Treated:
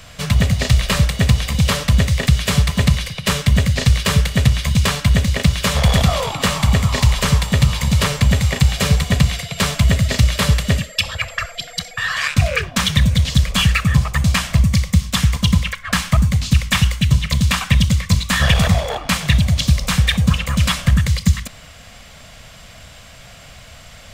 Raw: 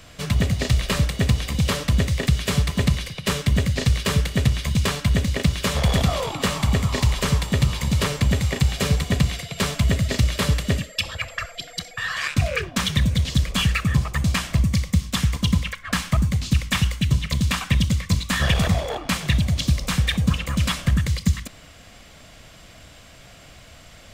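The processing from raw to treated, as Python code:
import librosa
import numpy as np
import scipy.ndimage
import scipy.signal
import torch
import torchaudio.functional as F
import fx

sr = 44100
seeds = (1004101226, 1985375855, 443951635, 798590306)

y = fx.peak_eq(x, sr, hz=330.0, db=-11.5, octaves=0.61)
y = F.gain(torch.from_numpy(y), 6.0).numpy()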